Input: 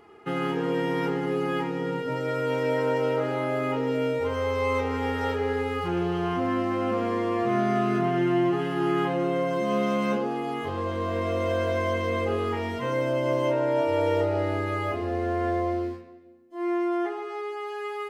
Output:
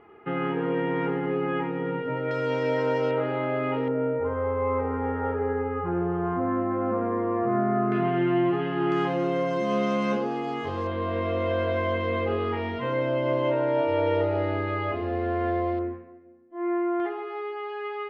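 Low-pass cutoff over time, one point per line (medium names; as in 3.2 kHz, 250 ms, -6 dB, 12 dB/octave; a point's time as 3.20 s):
low-pass 24 dB/octave
2.7 kHz
from 2.31 s 5.8 kHz
from 3.11 s 3.3 kHz
from 3.88 s 1.6 kHz
from 7.92 s 3.4 kHz
from 8.92 s 6.7 kHz
from 10.87 s 3.8 kHz
from 15.79 s 2.1 kHz
from 17.00 s 3.5 kHz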